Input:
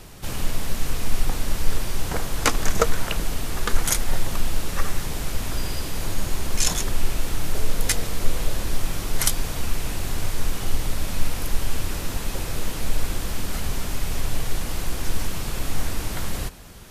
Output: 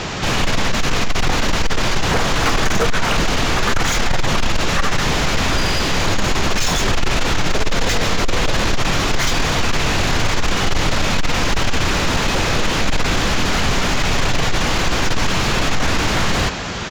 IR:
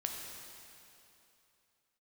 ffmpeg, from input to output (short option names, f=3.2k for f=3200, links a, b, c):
-filter_complex "[0:a]apsyclip=8.5dB,aresample=16000,asoftclip=type=tanh:threshold=-8dB,aresample=44100,asplit=2[a][b];[b]highpass=f=720:p=1,volume=30dB,asoftclip=type=tanh:threshold=-4.5dB[c];[a][c]amix=inputs=2:normalize=0,lowpass=f=5k:p=1,volume=-6dB,bass=f=250:g=8,treble=f=4k:g=-3,volume=-6dB"